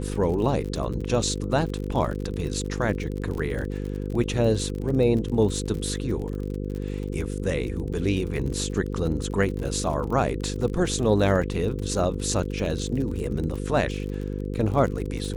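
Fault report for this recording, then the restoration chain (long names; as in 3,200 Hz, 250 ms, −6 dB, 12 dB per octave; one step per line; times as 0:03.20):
mains buzz 50 Hz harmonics 10 −30 dBFS
surface crackle 42 per second −31 dBFS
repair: click removal
hum removal 50 Hz, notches 10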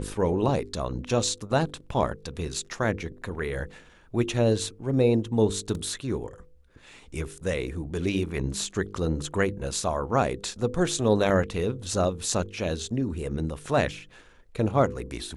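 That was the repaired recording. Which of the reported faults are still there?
none of them is left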